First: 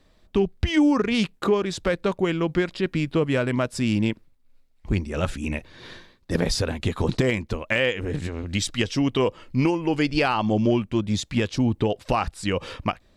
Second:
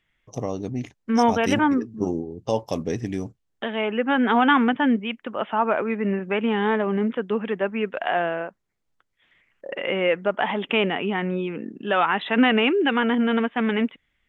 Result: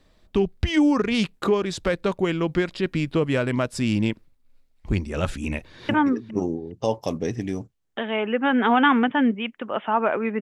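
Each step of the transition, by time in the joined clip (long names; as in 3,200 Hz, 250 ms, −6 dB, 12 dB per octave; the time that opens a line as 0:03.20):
first
0:05.46–0:05.89: delay throw 410 ms, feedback 25%, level −18 dB
0:05.89: continue with second from 0:01.54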